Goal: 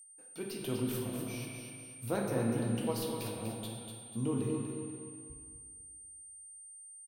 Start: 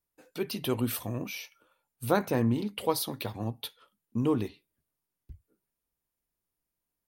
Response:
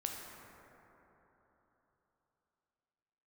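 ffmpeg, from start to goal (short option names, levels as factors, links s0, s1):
-filter_complex "[0:a]acrossover=split=780|1100[s0][s1][s2];[s1]acompressor=threshold=0.00158:ratio=6[s3];[s2]aeval=exprs='(tanh(22.4*val(0)+0.5)-tanh(0.5))/22.4':c=same[s4];[s0][s3][s4]amix=inputs=3:normalize=0,aeval=exprs='val(0)+0.00631*sin(2*PI*8800*n/s)':c=same,aecho=1:1:245|490|735|980:0.473|0.175|0.0648|0.024[s5];[1:a]atrim=start_sample=2205,asetrate=88200,aresample=44100[s6];[s5][s6]afir=irnorm=-1:irlink=0"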